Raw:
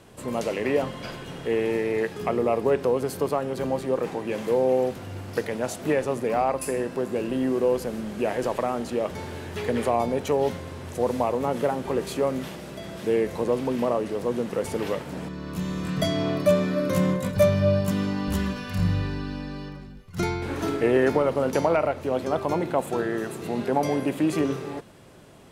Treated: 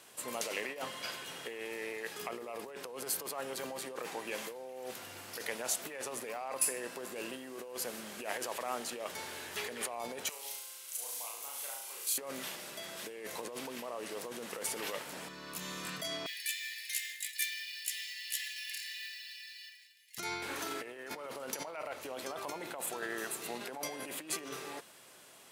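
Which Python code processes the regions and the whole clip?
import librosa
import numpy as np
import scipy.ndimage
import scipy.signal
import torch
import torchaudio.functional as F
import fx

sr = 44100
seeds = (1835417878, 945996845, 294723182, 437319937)

y = fx.chain(x, sr, fx.differentiator(),
    fx.notch(hz=1800.0, q=10.0),
    fx.room_flutter(wall_m=6.2, rt60_s=0.75), at=(10.29, 12.18))
y = fx.chain(y, sr, fx.brickwall_bandpass(low_hz=1600.0, high_hz=13000.0),
    fx.notch(hz=6000.0, q=14.0),
    fx.quant_float(bits=2), at=(16.26, 20.18))
y = fx.high_shelf(y, sr, hz=2900.0, db=-10.0)
y = fx.over_compress(y, sr, threshold_db=-28.0, ratio=-1.0)
y = np.diff(y, prepend=0.0)
y = y * 10.0 ** (9.5 / 20.0)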